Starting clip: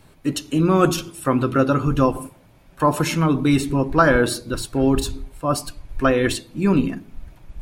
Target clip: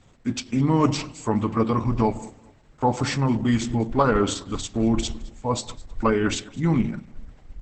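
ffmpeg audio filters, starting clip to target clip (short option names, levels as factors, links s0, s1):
-af "asetrate=37084,aresample=44100,atempo=1.18921,aecho=1:1:211|422:0.075|0.0202,volume=0.708" -ar 48000 -c:a libopus -b:a 10k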